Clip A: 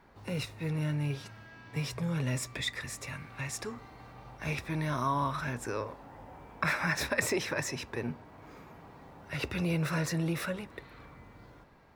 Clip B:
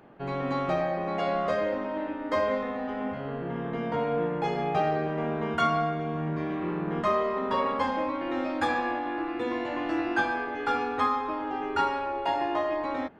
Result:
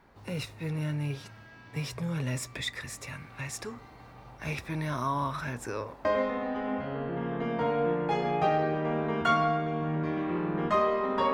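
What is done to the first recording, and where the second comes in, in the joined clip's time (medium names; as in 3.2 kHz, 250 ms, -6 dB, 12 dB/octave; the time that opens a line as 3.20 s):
clip A
6.05 s: go over to clip B from 2.38 s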